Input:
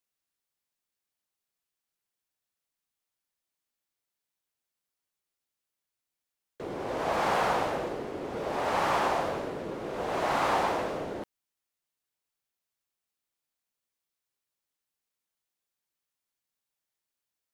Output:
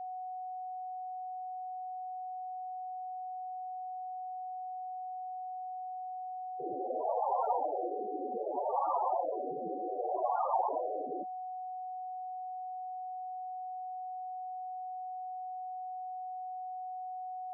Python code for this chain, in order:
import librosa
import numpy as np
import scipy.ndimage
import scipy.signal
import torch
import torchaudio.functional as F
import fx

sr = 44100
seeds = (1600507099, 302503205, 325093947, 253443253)

y = x + 10.0 ** (-38.0 / 20.0) * np.sin(2.0 * np.pi * 740.0 * np.arange(len(x)) / sr)
y = fx.spec_topn(y, sr, count=8)